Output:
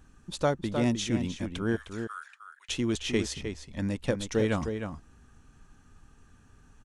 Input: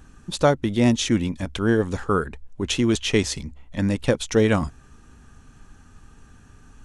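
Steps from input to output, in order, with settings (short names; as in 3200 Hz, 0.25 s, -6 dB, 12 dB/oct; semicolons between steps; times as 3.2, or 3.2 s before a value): 1.76–2.69 HPF 1500 Hz 24 dB/oct; outdoor echo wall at 53 m, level -7 dB; gain -8.5 dB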